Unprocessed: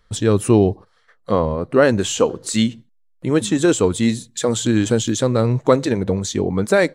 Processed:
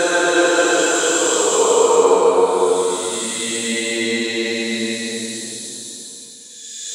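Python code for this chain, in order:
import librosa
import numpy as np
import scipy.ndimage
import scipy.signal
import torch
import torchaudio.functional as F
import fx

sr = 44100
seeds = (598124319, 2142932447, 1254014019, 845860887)

y = fx.filter_sweep_highpass(x, sr, from_hz=1100.0, to_hz=93.0, start_s=3.03, end_s=6.78, q=1.6)
y = fx.paulstretch(y, sr, seeds[0], factor=9.9, window_s=0.25, from_s=3.63)
y = y * librosa.db_to_amplitude(5.5)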